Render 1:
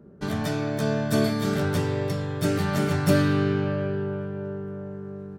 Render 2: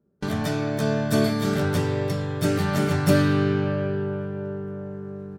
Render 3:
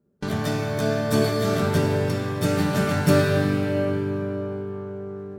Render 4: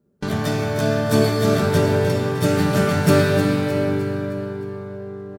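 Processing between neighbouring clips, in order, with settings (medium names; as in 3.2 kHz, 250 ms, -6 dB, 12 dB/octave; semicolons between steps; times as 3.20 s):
gate with hold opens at -29 dBFS; trim +1.5 dB
plate-style reverb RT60 3.3 s, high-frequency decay 0.7×, DRR 3 dB
feedback delay 308 ms, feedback 48%, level -10 dB; trim +3 dB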